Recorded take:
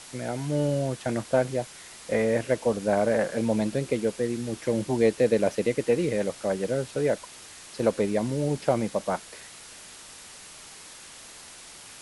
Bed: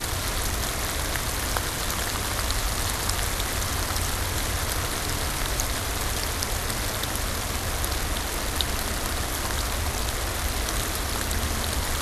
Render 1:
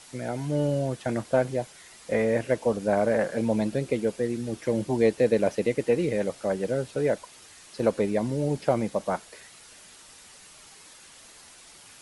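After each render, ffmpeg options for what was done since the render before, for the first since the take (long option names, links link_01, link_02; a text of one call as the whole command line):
ffmpeg -i in.wav -af "afftdn=noise_reduction=6:noise_floor=-46" out.wav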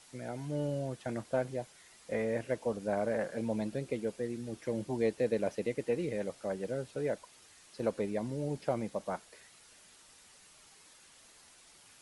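ffmpeg -i in.wav -af "volume=-9dB" out.wav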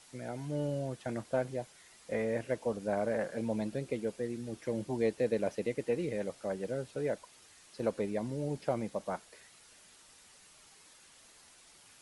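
ffmpeg -i in.wav -af anull out.wav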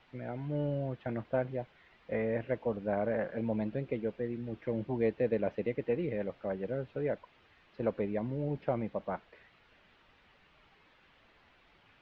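ffmpeg -i in.wav -af "lowpass=frequency=3000:width=0.5412,lowpass=frequency=3000:width=1.3066,lowshelf=frequency=110:gain=6" out.wav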